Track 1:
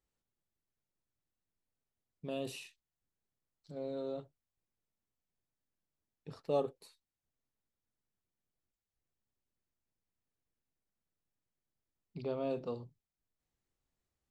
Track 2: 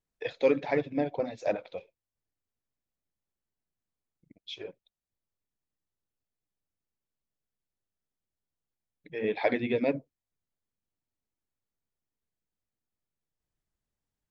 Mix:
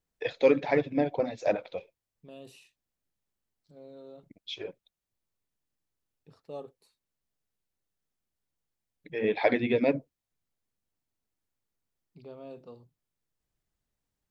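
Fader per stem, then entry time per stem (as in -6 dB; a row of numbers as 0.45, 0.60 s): -8.5, +2.5 dB; 0.00, 0.00 s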